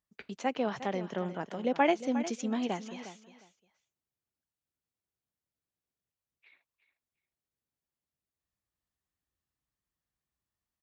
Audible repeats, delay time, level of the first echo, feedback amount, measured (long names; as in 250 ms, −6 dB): 2, 357 ms, −13.0 dB, 18%